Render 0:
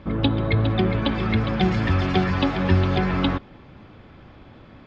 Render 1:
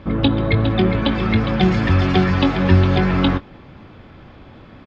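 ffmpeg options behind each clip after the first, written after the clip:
-filter_complex "[0:a]asplit=2[s0][s1];[s1]adelay=22,volume=0.251[s2];[s0][s2]amix=inputs=2:normalize=0,volume=1.58"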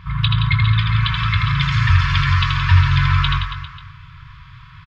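-filter_complex "[0:a]afftfilt=real='re*(1-between(b*sr/4096,170,930))':imag='im*(1-between(b*sr/4096,170,930))':win_size=4096:overlap=0.75,asplit=2[s0][s1];[s1]aecho=0:1:80|172|277.8|399.5|539.4:0.631|0.398|0.251|0.158|0.1[s2];[s0][s2]amix=inputs=2:normalize=0,volume=1.26"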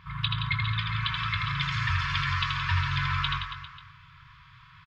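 -af "lowshelf=f=150:g=-11,volume=0.422"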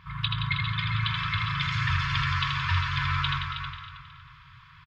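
-filter_complex "[0:a]asplit=2[s0][s1];[s1]adelay=318,lowpass=f=4700:p=1,volume=0.473,asplit=2[s2][s3];[s3]adelay=318,lowpass=f=4700:p=1,volume=0.29,asplit=2[s4][s5];[s5]adelay=318,lowpass=f=4700:p=1,volume=0.29,asplit=2[s6][s7];[s7]adelay=318,lowpass=f=4700:p=1,volume=0.29[s8];[s0][s2][s4][s6][s8]amix=inputs=5:normalize=0"

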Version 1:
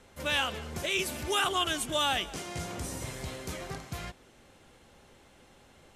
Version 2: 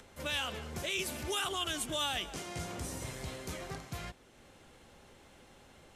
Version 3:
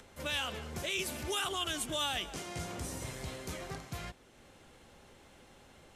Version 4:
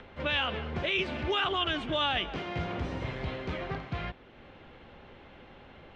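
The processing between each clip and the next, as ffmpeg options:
-filter_complex "[0:a]acrossover=split=120|3000[s0][s1][s2];[s1]alimiter=level_in=1.26:limit=0.0631:level=0:latency=1:release=64,volume=0.794[s3];[s0][s3][s2]amix=inputs=3:normalize=0,acompressor=mode=upward:threshold=0.00355:ratio=2.5,volume=0.708"
-af anull
-af "lowpass=f=3300:w=0.5412,lowpass=f=3300:w=1.3066,volume=2.24"

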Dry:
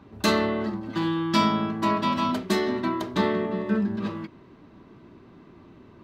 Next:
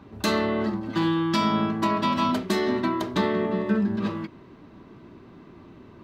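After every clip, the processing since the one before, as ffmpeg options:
-af "alimiter=limit=0.168:level=0:latency=1:release=196,volume=1.33"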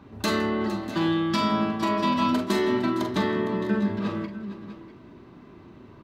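-af "aecho=1:1:40|48|162|459|641|656:0.355|0.299|0.106|0.2|0.112|0.141,volume=0.841"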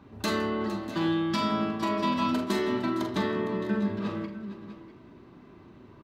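-filter_complex "[0:a]asplit=2[s0][s1];[s1]adelay=80,highpass=300,lowpass=3400,asoftclip=type=hard:threshold=0.106,volume=0.251[s2];[s0][s2]amix=inputs=2:normalize=0,volume=0.668"

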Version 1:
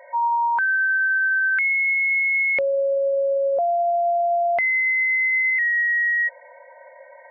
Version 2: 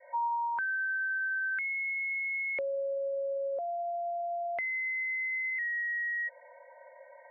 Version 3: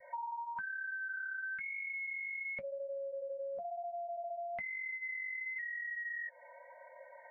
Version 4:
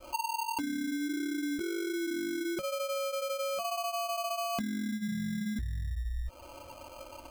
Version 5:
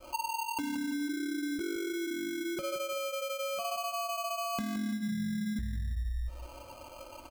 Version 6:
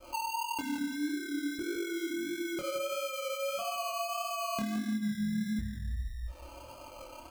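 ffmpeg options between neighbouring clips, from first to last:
-filter_complex "[0:a]lowpass=f=2200:p=1,adynamicequalizer=threshold=0.0141:dfrequency=820:dqfactor=1.5:tfrequency=820:tqfactor=1.5:attack=5:release=100:ratio=0.375:range=4:mode=cutabove:tftype=bell,acrossover=split=310|1100[s0][s1][s2];[s0]acompressor=threshold=0.002:ratio=4[s3];[s1]acompressor=threshold=0.0562:ratio=4[s4];[s2]acompressor=threshold=0.0501:ratio=4[s5];[s3][s4][s5]amix=inputs=3:normalize=0,volume=0.447"
-af "lowshelf=f=260:t=q:w=3:g=11,flanger=delay=1.7:depth=7.5:regen=-39:speed=1:shape=sinusoidal,acompressor=threshold=0.00708:ratio=6,volume=1.58"
-af "acrusher=samples=24:mix=1:aa=0.000001,volume=2.24"
-af "aecho=1:1:170|340|510:0.316|0.0949|0.0285,volume=0.891"
-af "flanger=delay=22.5:depth=6.8:speed=1.6,volume=1.41"

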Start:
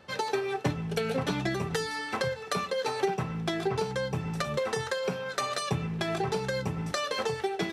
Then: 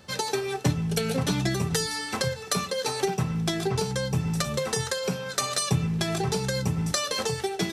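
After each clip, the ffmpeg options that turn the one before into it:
-af "bass=f=250:g=8,treble=f=4000:g=13,bandreject=f=50:t=h:w=6,bandreject=f=100:t=h:w=6,bandreject=f=150:t=h:w=6"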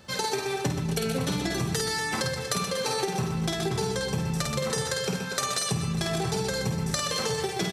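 -af "aecho=1:1:50|125|237.5|406.2|659.4:0.631|0.398|0.251|0.158|0.1,acompressor=threshold=0.0631:ratio=6"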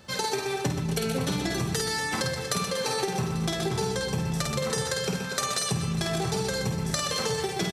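-af "aecho=1:1:841:0.126"

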